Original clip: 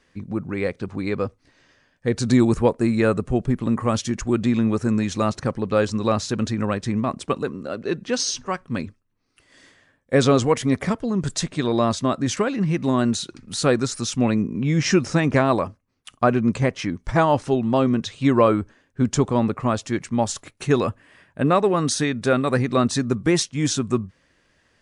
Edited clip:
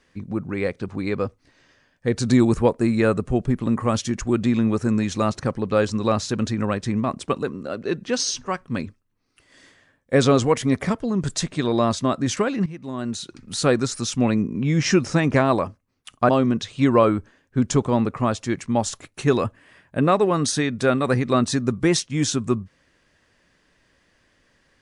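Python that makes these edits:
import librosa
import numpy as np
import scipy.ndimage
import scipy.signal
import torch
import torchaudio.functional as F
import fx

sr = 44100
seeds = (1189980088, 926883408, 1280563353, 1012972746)

y = fx.edit(x, sr, fx.fade_in_from(start_s=12.66, length_s=0.76, curve='qua', floor_db=-14.0),
    fx.cut(start_s=16.29, length_s=1.43), tone=tone)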